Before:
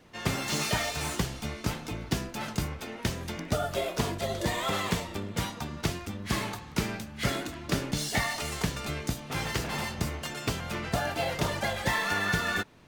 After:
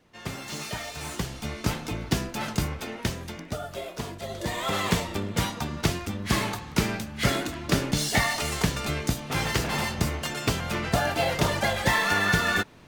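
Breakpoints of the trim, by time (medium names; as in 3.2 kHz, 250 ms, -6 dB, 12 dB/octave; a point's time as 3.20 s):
0.83 s -5.5 dB
1.66 s +4 dB
2.89 s +4 dB
3.59 s -5 dB
4.18 s -5 dB
4.94 s +5 dB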